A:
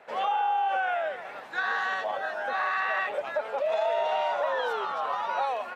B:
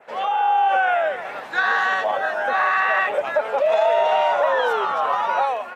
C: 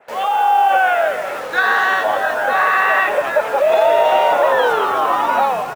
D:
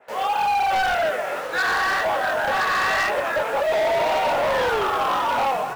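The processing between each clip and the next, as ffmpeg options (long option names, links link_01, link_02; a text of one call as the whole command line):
ffmpeg -i in.wav -af "adynamicequalizer=threshold=0.002:dfrequency=4300:dqfactor=2.3:tfrequency=4300:tqfactor=2.3:attack=5:release=100:ratio=0.375:range=3:mode=cutabove:tftype=bell,dynaudnorm=framelen=160:gausssize=5:maxgain=6dB,volume=3dB" out.wav
ffmpeg -i in.wav -filter_complex "[0:a]asplit=2[link_01][link_02];[link_02]acrusher=bits=5:mix=0:aa=0.000001,volume=-3.5dB[link_03];[link_01][link_03]amix=inputs=2:normalize=0,asplit=9[link_04][link_05][link_06][link_07][link_08][link_09][link_10][link_11][link_12];[link_05]adelay=195,afreqshift=-63,volume=-13dB[link_13];[link_06]adelay=390,afreqshift=-126,volume=-16.7dB[link_14];[link_07]adelay=585,afreqshift=-189,volume=-20.5dB[link_15];[link_08]adelay=780,afreqshift=-252,volume=-24.2dB[link_16];[link_09]adelay=975,afreqshift=-315,volume=-28dB[link_17];[link_10]adelay=1170,afreqshift=-378,volume=-31.7dB[link_18];[link_11]adelay=1365,afreqshift=-441,volume=-35.5dB[link_19];[link_12]adelay=1560,afreqshift=-504,volume=-39.2dB[link_20];[link_04][link_13][link_14][link_15][link_16][link_17][link_18][link_19][link_20]amix=inputs=9:normalize=0" out.wav
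ffmpeg -i in.wav -af "flanger=delay=15.5:depth=6.9:speed=1.9,volume=18.5dB,asoftclip=hard,volume=-18.5dB" out.wav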